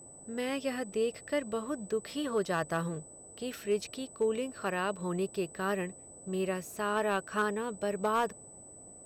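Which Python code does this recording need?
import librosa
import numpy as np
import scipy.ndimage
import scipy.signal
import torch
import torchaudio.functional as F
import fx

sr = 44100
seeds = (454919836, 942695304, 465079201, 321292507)

y = fx.fix_declip(x, sr, threshold_db=-21.5)
y = fx.notch(y, sr, hz=8000.0, q=30.0)
y = fx.noise_reduce(y, sr, print_start_s=8.5, print_end_s=9.0, reduce_db=27.0)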